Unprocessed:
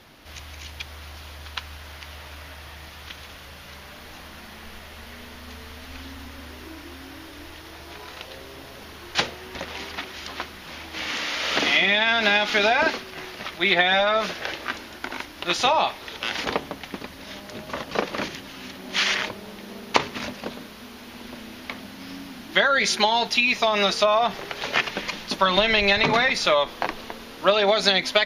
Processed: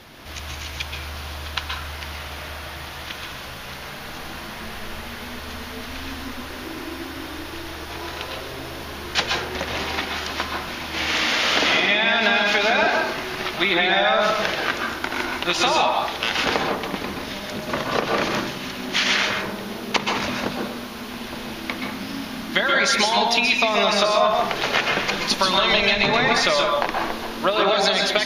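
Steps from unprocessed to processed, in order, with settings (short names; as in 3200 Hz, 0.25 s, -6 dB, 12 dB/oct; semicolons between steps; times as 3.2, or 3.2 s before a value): 25.27–25.94 bell 7700 Hz +6.5 dB 2.7 oct; compressor 6:1, threshold -23 dBFS, peak gain reduction 11.5 dB; plate-style reverb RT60 0.64 s, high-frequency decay 0.5×, pre-delay 0.115 s, DRR 0.5 dB; gain +5.5 dB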